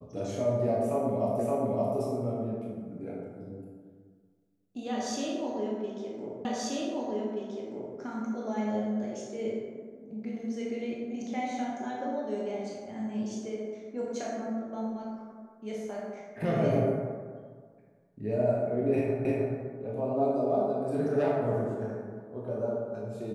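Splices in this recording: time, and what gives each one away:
1.39 s: repeat of the last 0.57 s
6.45 s: repeat of the last 1.53 s
19.25 s: repeat of the last 0.31 s

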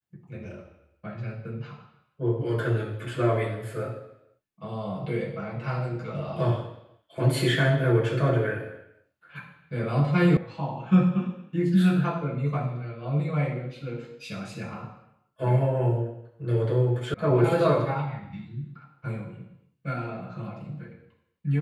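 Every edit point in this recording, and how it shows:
10.37 s: sound stops dead
17.14 s: sound stops dead

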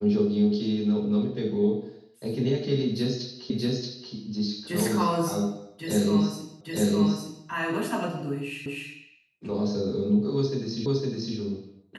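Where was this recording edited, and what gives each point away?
3.50 s: repeat of the last 0.63 s
6.61 s: repeat of the last 0.86 s
8.66 s: repeat of the last 0.25 s
10.86 s: repeat of the last 0.51 s

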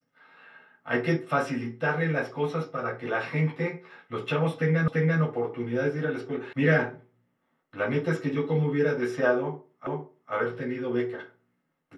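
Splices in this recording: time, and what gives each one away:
4.88 s: repeat of the last 0.34 s
6.53 s: sound stops dead
9.87 s: repeat of the last 0.46 s

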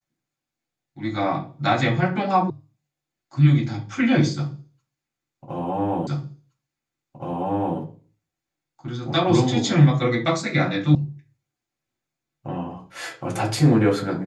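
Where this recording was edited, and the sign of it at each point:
2.50 s: sound stops dead
6.07 s: repeat of the last 1.72 s
10.95 s: sound stops dead

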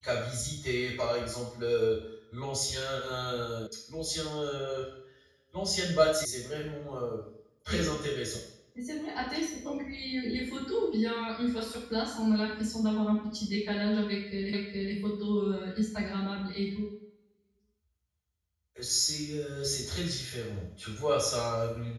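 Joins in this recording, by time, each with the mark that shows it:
3.67 s: sound stops dead
6.25 s: sound stops dead
14.53 s: repeat of the last 0.42 s

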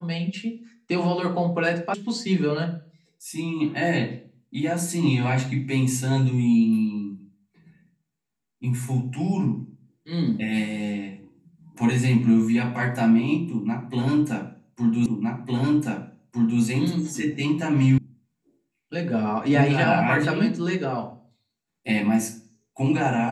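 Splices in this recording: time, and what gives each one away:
1.94 s: sound stops dead
15.06 s: repeat of the last 1.56 s
17.98 s: sound stops dead

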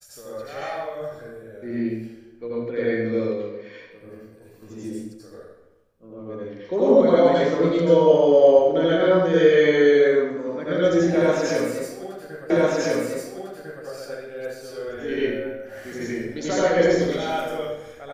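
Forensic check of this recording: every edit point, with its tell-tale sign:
12.50 s: repeat of the last 1.35 s

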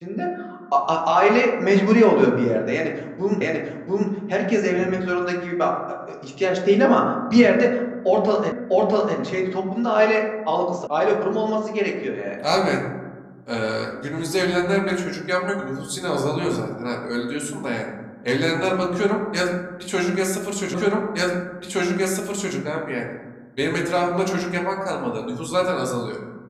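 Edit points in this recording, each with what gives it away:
3.41 s: repeat of the last 0.69 s
8.52 s: repeat of the last 0.65 s
10.87 s: sound stops dead
20.74 s: repeat of the last 1.82 s

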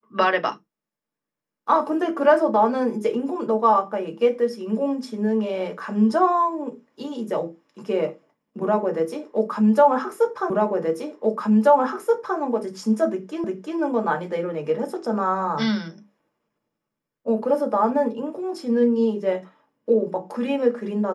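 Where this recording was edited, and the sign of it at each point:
10.50 s: repeat of the last 1.88 s
13.44 s: repeat of the last 0.35 s

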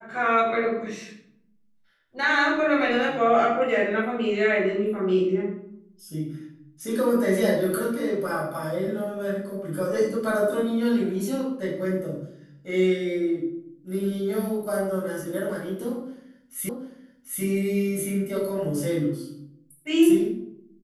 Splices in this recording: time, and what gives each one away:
16.69 s: repeat of the last 0.74 s

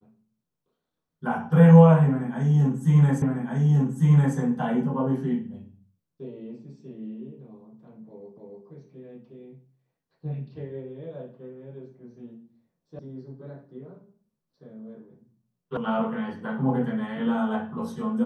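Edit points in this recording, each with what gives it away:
3.22 s: repeat of the last 1.15 s
8.37 s: repeat of the last 0.29 s
12.99 s: sound stops dead
15.77 s: sound stops dead

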